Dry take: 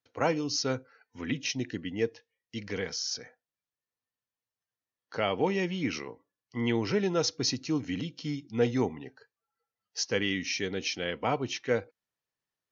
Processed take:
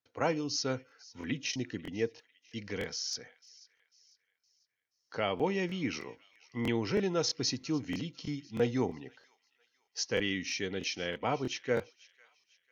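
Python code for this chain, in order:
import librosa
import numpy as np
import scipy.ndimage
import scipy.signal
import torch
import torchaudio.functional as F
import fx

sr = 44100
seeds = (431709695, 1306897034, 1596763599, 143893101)

y = fx.echo_wet_highpass(x, sr, ms=497, feedback_pct=40, hz=1700.0, wet_db=-20.0)
y = fx.buffer_crackle(y, sr, first_s=0.87, period_s=0.32, block=1024, kind='repeat')
y = y * 10.0 ** (-3.0 / 20.0)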